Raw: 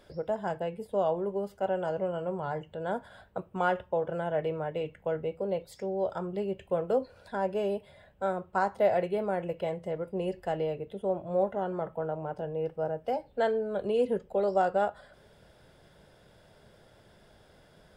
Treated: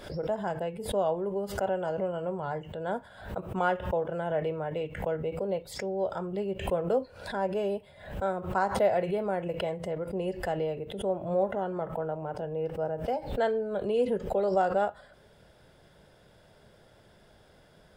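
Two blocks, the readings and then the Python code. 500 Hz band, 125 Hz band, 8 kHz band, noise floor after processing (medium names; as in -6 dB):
+0.5 dB, +2.5 dB, no reading, -59 dBFS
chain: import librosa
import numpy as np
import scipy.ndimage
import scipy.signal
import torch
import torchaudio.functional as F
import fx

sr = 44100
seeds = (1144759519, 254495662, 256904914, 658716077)

y = fx.pre_swell(x, sr, db_per_s=94.0)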